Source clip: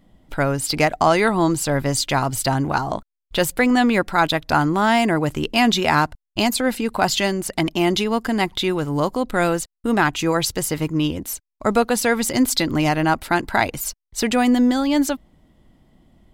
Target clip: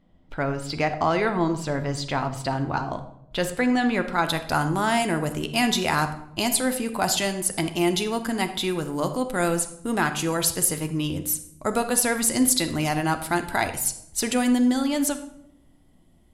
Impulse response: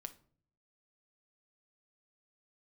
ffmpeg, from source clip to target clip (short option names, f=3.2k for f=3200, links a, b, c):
-filter_complex "[0:a]asetnsamples=n=441:p=0,asendcmd='2.93 equalizer g -4;4.25 equalizer g 12',equalizer=f=11k:t=o:w=1.1:g=-15[a];[1:a]atrim=start_sample=2205,asetrate=22932,aresample=44100[b];[a][b]afir=irnorm=-1:irlink=0,volume=-4.5dB"